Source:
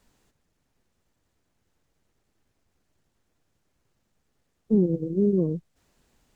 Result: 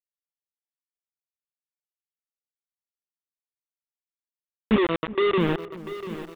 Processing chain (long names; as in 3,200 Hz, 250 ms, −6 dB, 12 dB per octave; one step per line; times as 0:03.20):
adaptive Wiener filter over 41 samples
0:04.76–0:05.38: Butterworth high-pass 270 Hz 72 dB per octave
in parallel at −1 dB: downward compressor 6 to 1, threshold −34 dBFS, peak gain reduction 16 dB
on the sum: bit reduction 4 bits
on a send: feedback echo with a low-pass in the loop 370 ms, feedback 62%, low-pass 810 Hz, level −16.5 dB
on the sum: downsampling to 8,000 Hz
feedback echo at a low word length 693 ms, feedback 55%, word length 7 bits, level −13 dB